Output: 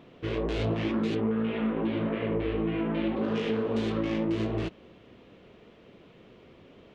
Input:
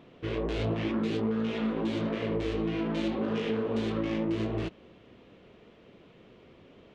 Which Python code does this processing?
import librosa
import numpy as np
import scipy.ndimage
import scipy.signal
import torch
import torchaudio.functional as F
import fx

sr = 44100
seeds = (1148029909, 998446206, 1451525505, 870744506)

y = fx.lowpass(x, sr, hz=3000.0, slope=24, at=(1.14, 3.15), fade=0.02)
y = F.gain(torch.from_numpy(y), 1.5).numpy()